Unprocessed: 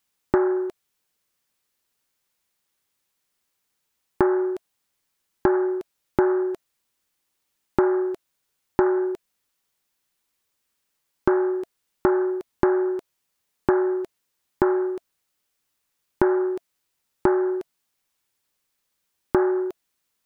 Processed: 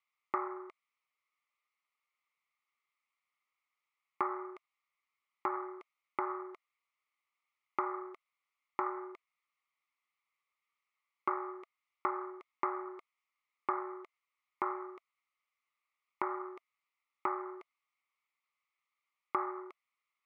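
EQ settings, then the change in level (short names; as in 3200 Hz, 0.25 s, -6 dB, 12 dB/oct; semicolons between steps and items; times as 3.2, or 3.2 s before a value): double band-pass 1600 Hz, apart 0.82 oct; notch 1600 Hz, Q 17; +2.0 dB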